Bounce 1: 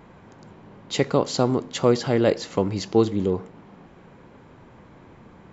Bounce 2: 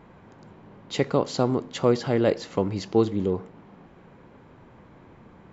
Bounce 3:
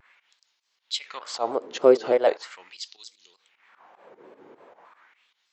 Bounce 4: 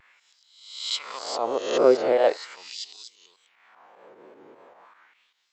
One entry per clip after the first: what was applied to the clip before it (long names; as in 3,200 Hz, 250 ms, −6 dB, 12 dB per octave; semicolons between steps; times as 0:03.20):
high-shelf EQ 5,700 Hz −7.5 dB; level −2 dB
fake sidechain pumping 152 BPM, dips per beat 2, −15 dB, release 112 ms; auto-filter high-pass sine 0.4 Hz 370–5,100 Hz; pitch modulation by a square or saw wave square 3.3 Hz, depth 100 cents
peak hold with a rise ahead of every peak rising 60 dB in 0.76 s; level −2 dB